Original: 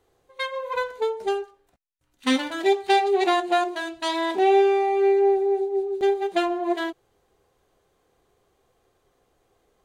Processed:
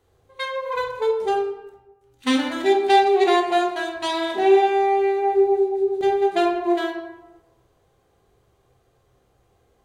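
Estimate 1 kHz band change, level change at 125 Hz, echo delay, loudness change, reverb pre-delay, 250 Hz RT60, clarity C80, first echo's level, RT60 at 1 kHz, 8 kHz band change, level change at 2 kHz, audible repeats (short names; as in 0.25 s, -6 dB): +3.5 dB, n/a, none, +2.5 dB, 16 ms, 1.0 s, 8.0 dB, none, 1.1 s, n/a, +1.5 dB, none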